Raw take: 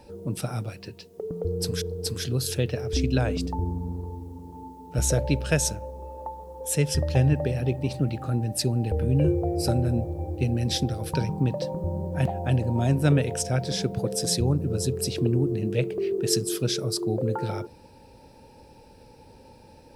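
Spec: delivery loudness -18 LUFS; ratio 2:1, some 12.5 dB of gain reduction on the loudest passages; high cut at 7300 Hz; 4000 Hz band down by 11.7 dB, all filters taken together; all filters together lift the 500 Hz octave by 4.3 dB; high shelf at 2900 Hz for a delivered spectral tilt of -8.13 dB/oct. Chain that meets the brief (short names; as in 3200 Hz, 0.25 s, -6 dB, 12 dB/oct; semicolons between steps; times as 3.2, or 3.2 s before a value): LPF 7300 Hz; bell 500 Hz +5.5 dB; high shelf 2900 Hz -9 dB; bell 4000 Hz -6.5 dB; compressor 2:1, threshold -39 dBFS; gain +18 dB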